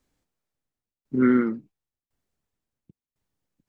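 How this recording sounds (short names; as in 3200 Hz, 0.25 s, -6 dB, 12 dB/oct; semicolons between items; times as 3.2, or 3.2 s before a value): tremolo saw down 0.95 Hz, depth 95%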